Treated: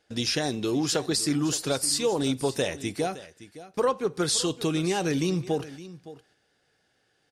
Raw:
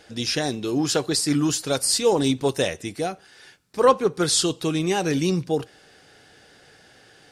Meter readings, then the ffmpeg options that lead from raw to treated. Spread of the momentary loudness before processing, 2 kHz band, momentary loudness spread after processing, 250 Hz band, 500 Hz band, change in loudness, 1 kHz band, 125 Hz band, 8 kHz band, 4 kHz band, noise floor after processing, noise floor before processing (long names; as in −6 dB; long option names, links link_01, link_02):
10 LU, −3.5 dB, 16 LU, −3.5 dB, −5.0 dB, −4.0 dB, −6.5 dB, −3.5 dB, −3.5 dB, −3.5 dB, −71 dBFS, −53 dBFS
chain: -filter_complex "[0:a]agate=range=-19dB:threshold=-43dB:ratio=16:detection=peak,acompressor=threshold=-25dB:ratio=3,asplit=2[link_01][link_02];[link_02]aecho=0:1:565:0.158[link_03];[link_01][link_03]amix=inputs=2:normalize=0,volume=1dB"